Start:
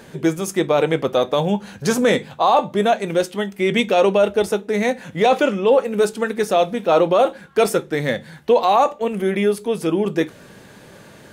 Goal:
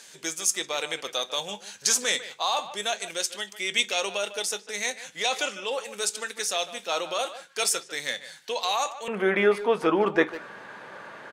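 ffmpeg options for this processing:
ffmpeg -i in.wav -filter_complex "[0:a]asetnsamples=nb_out_samples=441:pad=0,asendcmd='9.08 bandpass f 1200',bandpass=frequency=6600:width_type=q:width=1.3:csg=0,asplit=2[link_01][link_02];[link_02]adelay=150,highpass=300,lowpass=3400,asoftclip=type=hard:threshold=-25.5dB,volume=-13dB[link_03];[link_01][link_03]amix=inputs=2:normalize=0,volume=8dB" out.wav

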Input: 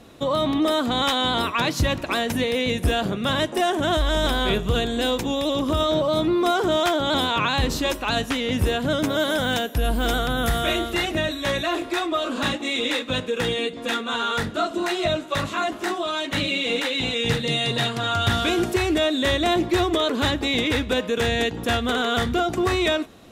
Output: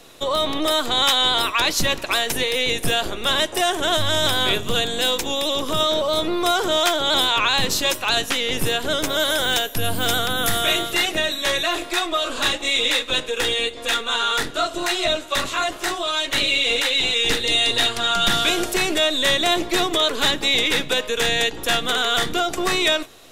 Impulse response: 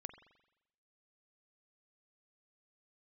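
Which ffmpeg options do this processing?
-filter_complex "[0:a]highshelf=frequency=2400:gain=10,acrossover=split=290|800|5000[link_01][link_02][link_03][link_04];[link_01]aeval=exprs='abs(val(0))':channel_layout=same[link_05];[link_05][link_02][link_03][link_04]amix=inputs=4:normalize=0"

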